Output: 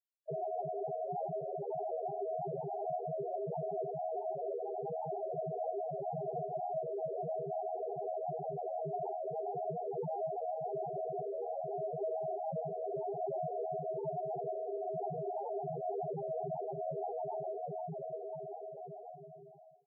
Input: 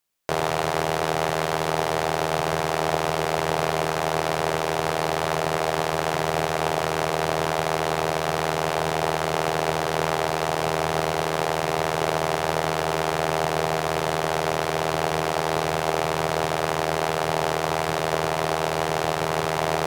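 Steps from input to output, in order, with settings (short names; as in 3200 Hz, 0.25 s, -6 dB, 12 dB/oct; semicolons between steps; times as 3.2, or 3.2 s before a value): ending faded out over 2.80 s; loudest bins only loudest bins 2; gain -2.5 dB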